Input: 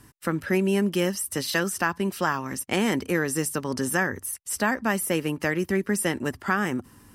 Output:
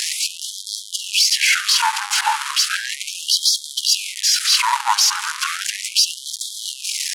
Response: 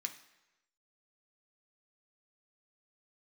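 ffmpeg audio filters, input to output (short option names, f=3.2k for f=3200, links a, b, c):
-af "aeval=exprs='val(0)+0.5*0.0708*sgn(val(0))':c=same,highpass=270,equalizer=f=800:w=4.1:g=-15,asetrate=23361,aresample=44100,atempo=1.88775,aeval=exprs='(tanh(7.08*val(0)+0.65)-tanh(0.65))/7.08':c=same,acontrast=54,afftfilt=real='re*gte(b*sr/1024,760*pow(3200/760,0.5+0.5*sin(2*PI*0.35*pts/sr)))':imag='im*gte(b*sr/1024,760*pow(3200/760,0.5+0.5*sin(2*PI*0.35*pts/sr)))':win_size=1024:overlap=0.75,volume=8dB"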